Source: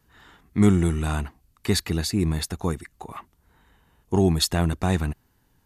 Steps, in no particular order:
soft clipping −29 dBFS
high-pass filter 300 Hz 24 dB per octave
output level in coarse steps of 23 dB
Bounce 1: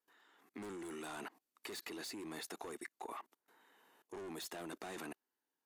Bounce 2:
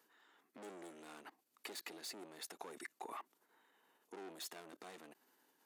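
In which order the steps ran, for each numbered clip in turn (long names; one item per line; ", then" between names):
high-pass filter, then soft clipping, then output level in coarse steps
soft clipping, then output level in coarse steps, then high-pass filter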